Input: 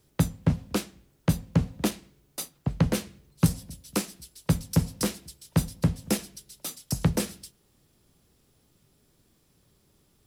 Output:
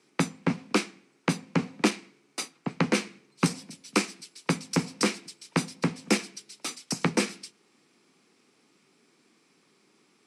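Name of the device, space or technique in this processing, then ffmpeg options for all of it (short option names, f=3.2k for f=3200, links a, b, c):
television speaker: -af "highpass=f=220:w=0.5412,highpass=f=220:w=1.3066,equalizer=f=590:t=q:w=4:g=-8,equalizer=f=1.2k:t=q:w=4:g=3,equalizer=f=2.3k:t=q:w=4:g=8,equalizer=f=3.4k:t=q:w=4:g=-4,equalizer=f=7k:t=q:w=4:g=-4,lowpass=f=8.3k:w=0.5412,lowpass=f=8.3k:w=1.3066,volume=5dB"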